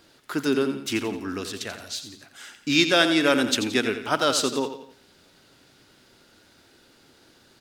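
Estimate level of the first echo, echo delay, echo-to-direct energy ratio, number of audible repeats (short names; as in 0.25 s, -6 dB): -10.0 dB, 87 ms, -9.0 dB, 3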